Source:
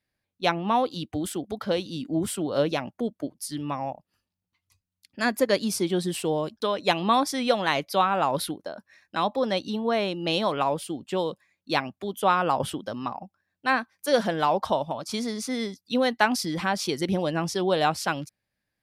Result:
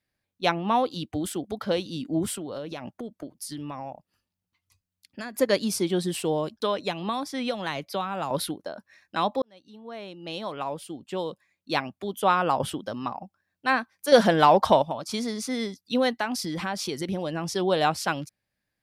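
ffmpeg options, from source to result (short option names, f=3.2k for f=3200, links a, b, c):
-filter_complex "[0:a]asettb=1/sr,asplit=3[a][b][c];[a]atrim=end=2.354[d];[b]atrim=start=2.35:end=5.35,asetpts=PTS-STARTPTS,afade=t=in:d=0.004:c=qsin,afade=t=out:st=2.996:d=0.004:c=qsin,acompressor=threshold=-31dB:ratio=10:attack=3.2:release=140:knee=1:detection=peak[e];[c]atrim=start=5.346[f];[d][e]acrossfade=d=0.004:c1=hsin:c2=qsin[g];[g][f]acrossfade=d=0.004:c1=qsin:c2=hsin,asettb=1/sr,asplit=3[h][i][j];[h]atrim=end=6.814[k];[i]atrim=start=6.81:end=8.31,asetpts=PTS-STARTPTS,afade=t=in:d=0.004:c=qsin,afade=t=out:st=1.496:d=0.004:c=qsin,acrossover=split=210|4100[l][m][n];[l]acompressor=threshold=-38dB:ratio=4[o];[m]acompressor=threshold=-28dB:ratio=4[p];[n]acompressor=threshold=-44dB:ratio=4[q];[o][p][q]amix=inputs=3:normalize=0[r];[j]atrim=start=8.306[s];[k][r]acrossfade=d=0.004:c1=hsin:c2=qsin[t];[t][s]acrossfade=d=0.004:c1=qsin:c2=hsin,asettb=1/sr,asplit=3[u][v][w];[u]atrim=end=14.124[x];[v]atrim=start=14.12:end=14.82,asetpts=PTS-STARTPTS,afade=t=in:d=0.004:c=qsin,afade=t=out:st=0.696:d=0.004:c=qsin,acontrast=60[y];[w]atrim=start=14.816[z];[x][y]acrossfade=d=0.004:c1=hsin:c2=qsin[aa];[aa][z]acrossfade=d=0.004:c1=qsin:c2=hsin,asettb=1/sr,asplit=3[ab][ac][ad];[ab]atrim=end=16.104[ae];[ac]atrim=start=16.1:end=17.52,asetpts=PTS-STARTPTS,afade=t=in:d=0.004:c=qsin,afade=t=out:st=1.416:d=0.004:c=qsin,acompressor=threshold=-28dB:ratio=2:attack=3.2:release=140:knee=1:detection=peak[af];[ad]atrim=start=17.516[ag];[ae][af]acrossfade=d=0.004:c1=hsin:c2=qsin[ah];[ah][ag]acrossfade=d=0.004:c1=qsin:c2=hsin,asplit=2[ai][aj];[ai]atrim=end=9.42,asetpts=PTS-STARTPTS,afade=t=out:st=9.416:d=0.004:c=hsin[ak];[aj]atrim=start=9.42,asetpts=PTS-STARTPTS,afade=t=in:d=2.71[al];[ak][al]concat=n=2:v=0:a=1"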